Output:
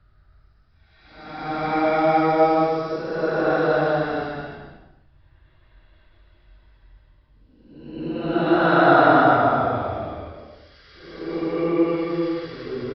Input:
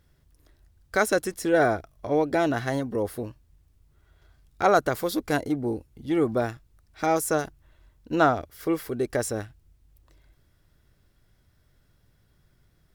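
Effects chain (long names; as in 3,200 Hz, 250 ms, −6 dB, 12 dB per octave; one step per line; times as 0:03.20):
tape wow and flutter 26 cents
extreme stretch with random phases 6×, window 0.25 s, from 0:06.74
downsampling to 11,025 Hz
level +4 dB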